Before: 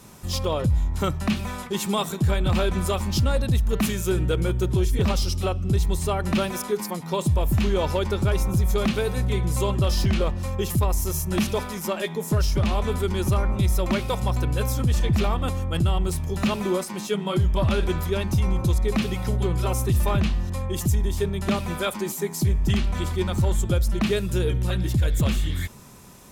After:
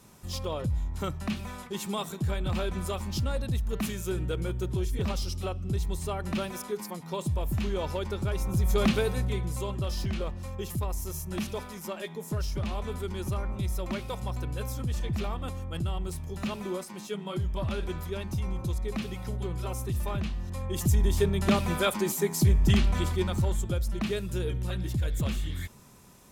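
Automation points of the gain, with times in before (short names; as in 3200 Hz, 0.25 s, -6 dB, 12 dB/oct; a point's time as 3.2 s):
8.36 s -8 dB
8.88 s -0.5 dB
9.6 s -9.5 dB
20.35 s -9.5 dB
21.06 s 0 dB
22.86 s 0 dB
23.7 s -7.5 dB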